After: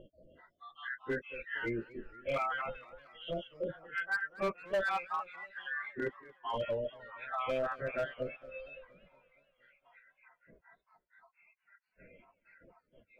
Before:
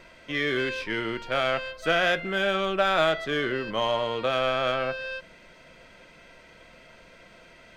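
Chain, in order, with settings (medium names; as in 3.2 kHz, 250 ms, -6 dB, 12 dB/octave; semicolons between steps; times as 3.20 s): random holes in the spectrogram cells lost 79%; reverb removal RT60 2 s; low-pass 2.3 kHz 24 dB/octave; plain phase-vocoder stretch 1.7×; hard clipper -27.5 dBFS, distortion -13 dB; modulated delay 232 ms, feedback 60%, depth 174 cents, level -20 dB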